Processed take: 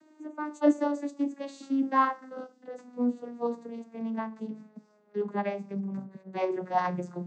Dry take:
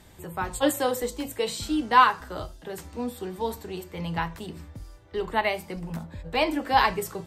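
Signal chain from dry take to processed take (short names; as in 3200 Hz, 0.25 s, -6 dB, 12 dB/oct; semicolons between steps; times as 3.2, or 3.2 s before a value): vocoder on a gliding note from D#4, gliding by -10 st; bell 3200 Hz -8 dB 0.86 oct; gain -2.5 dB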